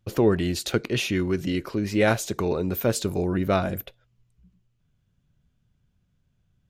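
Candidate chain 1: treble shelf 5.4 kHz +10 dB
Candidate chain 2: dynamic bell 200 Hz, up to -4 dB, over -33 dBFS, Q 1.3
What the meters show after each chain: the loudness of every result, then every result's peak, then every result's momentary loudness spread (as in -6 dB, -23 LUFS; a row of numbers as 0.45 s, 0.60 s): -24.0 LUFS, -26.0 LUFS; -7.5 dBFS, -8.0 dBFS; 6 LU, 6 LU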